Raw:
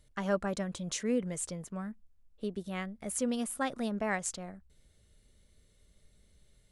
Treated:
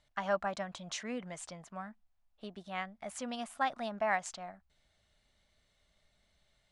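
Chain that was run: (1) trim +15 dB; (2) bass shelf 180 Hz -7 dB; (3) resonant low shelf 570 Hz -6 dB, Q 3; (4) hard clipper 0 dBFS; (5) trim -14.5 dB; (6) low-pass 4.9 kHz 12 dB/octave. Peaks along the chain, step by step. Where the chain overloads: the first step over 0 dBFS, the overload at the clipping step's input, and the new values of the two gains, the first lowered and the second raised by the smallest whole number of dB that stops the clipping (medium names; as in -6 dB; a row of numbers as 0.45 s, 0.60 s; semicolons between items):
-2.0 dBFS, -3.0 dBFS, -3.0 dBFS, -3.0 dBFS, -17.5 dBFS, -18.0 dBFS; nothing clips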